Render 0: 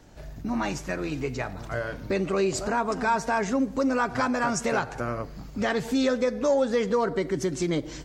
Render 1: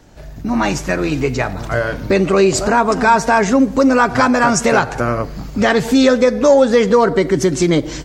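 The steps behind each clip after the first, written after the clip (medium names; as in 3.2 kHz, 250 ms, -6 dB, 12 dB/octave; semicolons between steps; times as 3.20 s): level rider gain up to 6.5 dB; trim +6 dB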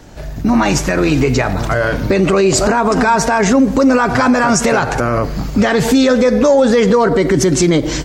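peak limiter -11.5 dBFS, peak gain reduction 10 dB; trim +7.5 dB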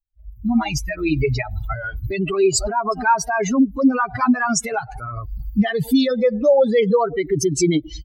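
expander on every frequency bin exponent 3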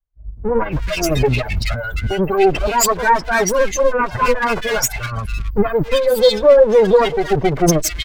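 comb filter that takes the minimum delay 1.9 ms; in parallel at -10 dB: overload inside the chain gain 26 dB; on the sum: bands offset in time lows, highs 270 ms, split 1.8 kHz; trim +5 dB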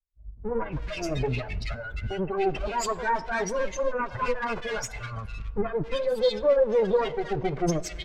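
distance through air 75 m; flange 0.47 Hz, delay 1.4 ms, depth 8.4 ms, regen -80%; on a send at -19.5 dB: reverberation RT60 2.2 s, pre-delay 52 ms; on the sum: trim -7 dB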